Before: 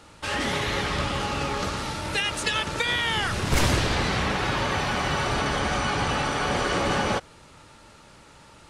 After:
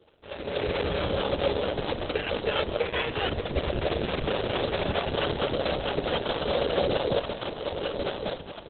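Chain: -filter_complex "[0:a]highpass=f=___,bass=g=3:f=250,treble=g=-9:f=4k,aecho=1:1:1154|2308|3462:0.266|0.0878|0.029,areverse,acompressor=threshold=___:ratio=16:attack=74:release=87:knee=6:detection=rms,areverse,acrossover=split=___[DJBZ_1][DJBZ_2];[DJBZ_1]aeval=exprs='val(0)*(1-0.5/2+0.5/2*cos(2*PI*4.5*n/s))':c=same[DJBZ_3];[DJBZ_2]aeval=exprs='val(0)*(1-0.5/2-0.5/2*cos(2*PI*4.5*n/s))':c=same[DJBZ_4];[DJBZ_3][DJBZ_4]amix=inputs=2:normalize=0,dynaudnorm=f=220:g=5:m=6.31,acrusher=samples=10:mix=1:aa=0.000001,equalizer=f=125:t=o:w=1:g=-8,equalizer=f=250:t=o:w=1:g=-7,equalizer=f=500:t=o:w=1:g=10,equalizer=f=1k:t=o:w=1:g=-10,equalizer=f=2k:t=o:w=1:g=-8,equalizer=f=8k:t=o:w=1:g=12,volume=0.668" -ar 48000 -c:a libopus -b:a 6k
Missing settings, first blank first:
73, 0.0224, 470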